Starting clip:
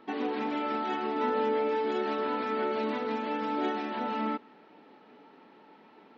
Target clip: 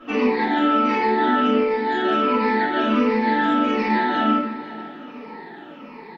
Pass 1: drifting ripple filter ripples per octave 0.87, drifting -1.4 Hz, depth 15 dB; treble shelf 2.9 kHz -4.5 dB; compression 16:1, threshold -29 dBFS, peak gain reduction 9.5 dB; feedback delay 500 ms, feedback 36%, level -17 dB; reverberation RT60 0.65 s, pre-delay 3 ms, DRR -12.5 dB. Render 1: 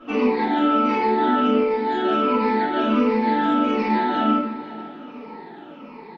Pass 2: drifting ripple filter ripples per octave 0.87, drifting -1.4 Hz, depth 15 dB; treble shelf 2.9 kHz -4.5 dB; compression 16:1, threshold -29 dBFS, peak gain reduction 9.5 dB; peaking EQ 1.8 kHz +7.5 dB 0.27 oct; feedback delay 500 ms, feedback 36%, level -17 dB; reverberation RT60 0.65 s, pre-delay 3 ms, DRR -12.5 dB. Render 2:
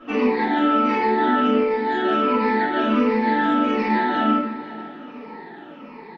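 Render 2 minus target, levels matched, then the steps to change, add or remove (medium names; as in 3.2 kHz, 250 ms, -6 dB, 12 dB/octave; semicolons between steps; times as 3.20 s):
8 kHz band -3.5 dB
remove: treble shelf 2.9 kHz -4.5 dB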